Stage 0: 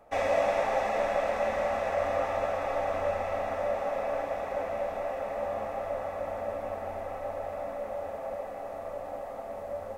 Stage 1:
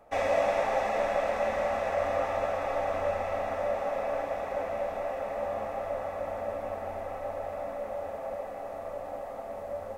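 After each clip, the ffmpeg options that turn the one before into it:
-af anull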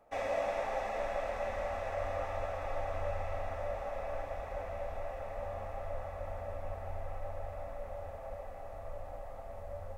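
-af "asubboost=boost=11:cutoff=77,volume=0.422"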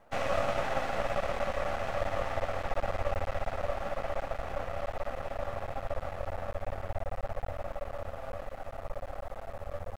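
-af "aeval=exprs='max(val(0),0)':c=same,volume=2.51"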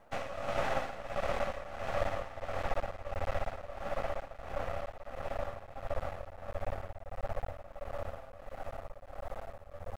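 -af "tremolo=f=1.5:d=0.77"

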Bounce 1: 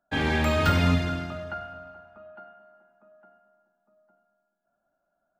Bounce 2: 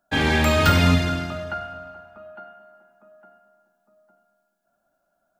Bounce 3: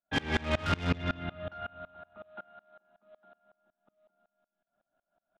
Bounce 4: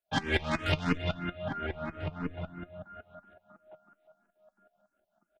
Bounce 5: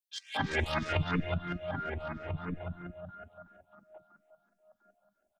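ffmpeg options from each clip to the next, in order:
-af "highshelf=f=3800:g=6.5,volume=1.68"
-af "aresample=8000,acrusher=bits=5:mode=log:mix=0:aa=0.000001,aresample=44100,asoftclip=type=tanh:threshold=0.106,aeval=exprs='val(0)*pow(10,-26*if(lt(mod(-5.4*n/s,1),2*abs(-5.4)/1000),1-mod(-5.4*n/s,1)/(2*abs(-5.4)/1000),(mod(-5.4*n/s,1)-2*abs(-5.4)/1000)/(1-2*abs(-5.4)/1000))/20)':c=same"
-filter_complex "[0:a]flanger=delay=4.6:depth=2.2:regen=61:speed=0.58:shape=triangular,asplit=2[s0][s1];[s1]adelay=1341,volume=0.501,highshelf=f=4000:g=-30.2[s2];[s0][s2]amix=inputs=2:normalize=0,asplit=2[s3][s4];[s4]afreqshift=3[s5];[s3][s5]amix=inputs=2:normalize=1,volume=2.66"
-filter_complex "[0:a]acrossover=split=280|3000[s0][s1][s2];[s1]adelay=230[s3];[s0]adelay=270[s4];[s4][s3][s2]amix=inputs=3:normalize=0"

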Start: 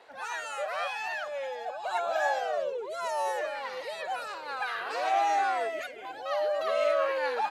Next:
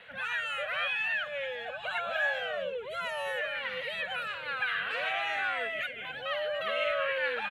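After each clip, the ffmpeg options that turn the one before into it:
-filter_complex "[0:a]firequalizer=gain_entry='entry(190,0);entry(340,-27);entry(500,-12);entry(820,-23);entry(1500,-6);entry(3100,-2);entry(5000,-26);entry(11000,-16)':delay=0.05:min_phase=1,asplit=2[s0][s1];[s1]acompressor=threshold=0.00355:ratio=6,volume=1.26[s2];[s0][s2]amix=inputs=2:normalize=0,volume=2.24"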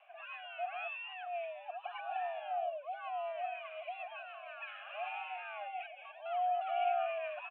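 -filter_complex "[0:a]highpass=f=400:t=q:w=0.5412,highpass=f=400:t=q:w=1.307,lowpass=f=3000:t=q:w=0.5176,lowpass=f=3000:t=q:w=0.7071,lowpass=f=3000:t=q:w=1.932,afreqshift=120,asplit=3[s0][s1][s2];[s0]bandpass=f=730:t=q:w=8,volume=1[s3];[s1]bandpass=f=1090:t=q:w=8,volume=0.501[s4];[s2]bandpass=f=2440:t=q:w=8,volume=0.355[s5];[s3][s4][s5]amix=inputs=3:normalize=0,volume=1.19"

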